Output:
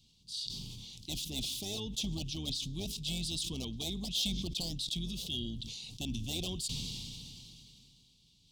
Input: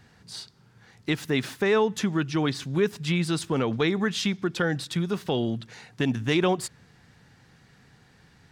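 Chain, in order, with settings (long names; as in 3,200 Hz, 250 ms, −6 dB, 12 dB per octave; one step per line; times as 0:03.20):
sub-octave generator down 2 octaves, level −3 dB
drawn EQ curve 250 Hz 0 dB, 720 Hz −22 dB, 1,200 Hz +14 dB, 11,000 Hz +2 dB
healed spectral selection 0:05.06–0:05.46, 400–1,200 Hz
low-shelf EQ 430 Hz −8 dB
gain into a clipping stage and back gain 19 dB
Chebyshev band-stop filter 720–3,300 Hz, order 3
level that may fall only so fast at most 21 dB per second
level −7 dB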